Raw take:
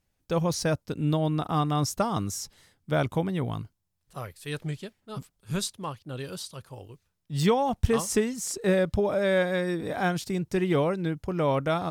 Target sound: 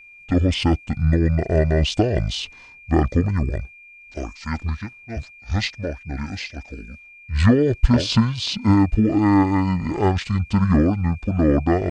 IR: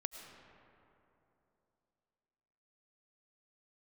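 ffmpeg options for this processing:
-af "asetrate=23361,aresample=44100,atempo=1.88775,aeval=exprs='val(0)+0.00282*sin(2*PI*2400*n/s)':channel_layout=same,volume=8dB"

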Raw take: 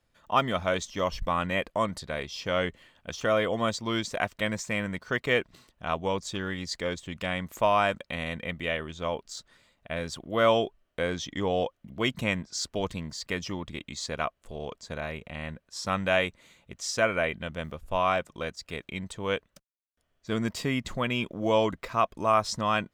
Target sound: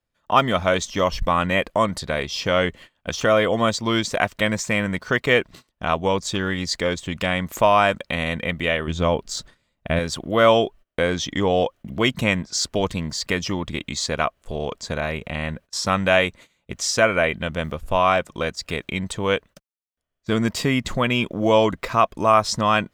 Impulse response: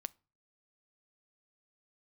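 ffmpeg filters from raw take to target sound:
-filter_complex "[0:a]asplit=2[link_01][link_02];[link_02]acompressor=threshold=-39dB:ratio=6,volume=1dB[link_03];[link_01][link_03]amix=inputs=2:normalize=0,asettb=1/sr,asplit=3[link_04][link_05][link_06];[link_04]atrim=end=8.874[link_07];[link_05]atrim=start=8.87:end=9.99,asetpts=PTS-STARTPTS,afade=type=in:duration=0.004:curve=qsin,afade=type=out:start_time=1.116:duration=0.004:curve=qsin,lowshelf=frequency=320:gain=8[link_08];[link_06]atrim=start=9.986[link_09];[link_07][link_08]acrossfade=duration=0.004:curve1=hsin:curve2=qsin[link_10];[link_10][link_09]acrossfade=duration=0.004:curve1=qsin:curve2=hsin,agate=range=-21dB:threshold=-46dB:ratio=16:detection=peak,volume=6dB"

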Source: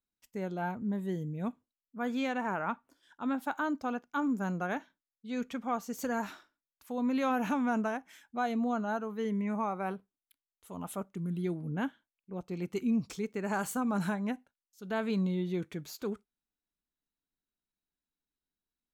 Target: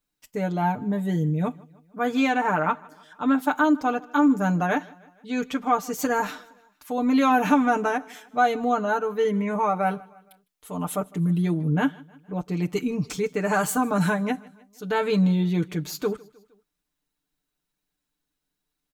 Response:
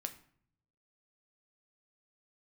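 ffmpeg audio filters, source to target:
-filter_complex "[0:a]aecho=1:1:6.7:0.83,asplit=2[link_01][link_02];[link_02]aecho=0:1:155|310|465:0.0631|0.0341|0.0184[link_03];[link_01][link_03]amix=inputs=2:normalize=0,volume=8.5dB"

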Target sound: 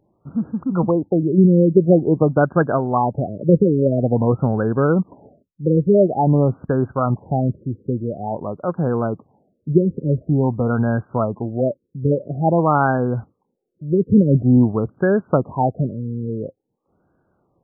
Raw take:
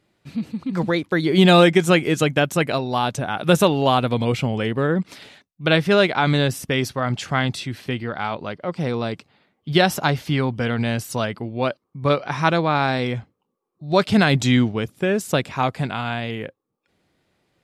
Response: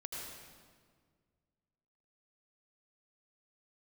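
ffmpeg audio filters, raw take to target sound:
-filter_complex "[0:a]asettb=1/sr,asplit=3[link_01][link_02][link_03];[link_01]atrim=end=1.234[link_04];[link_02]atrim=start=1.23:end=1.77,asetpts=PTS-STARTPTS,afade=type=in:duration=0.004:curve=qsin,afade=type=out:start_time=0.536:duration=0.004:curve=qsin,equalizer=frequency=1200:width_type=o:width=2.4:gain=-13.5[link_05];[link_03]atrim=start=1.766[link_06];[link_04][link_05]acrossfade=duration=0.004:curve1=hsin:curve2=qsin[link_07];[link_07][link_06]acrossfade=duration=0.004:curve1=qsin:curve2=hsin,afftfilt=real='re*lt(b*sr/1024,530*pow(1700/530,0.5+0.5*sin(2*PI*0.48*pts/sr)))':imag='im*lt(b*sr/1024,530*pow(1700/530,0.5+0.5*sin(2*PI*0.48*pts/sr)))':win_size=1024:overlap=0.75,volume=4dB"

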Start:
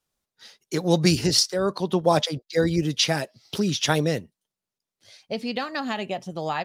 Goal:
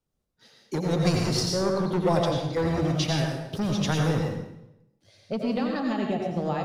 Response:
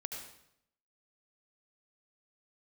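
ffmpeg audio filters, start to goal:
-filter_complex "[0:a]tiltshelf=frequency=650:gain=8,acrossover=split=640|5400[link_01][link_02][link_03];[link_01]asoftclip=type=hard:threshold=-22.5dB[link_04];[link_04][link_02][link_03]amix=inputs=3:normalize=0[link_05];[1:a]atrim=start_sample=2205,asetrate=37044,aresample=44100[link_06];[link_05][link_06]afir=irnorm=-1:irlink=0"

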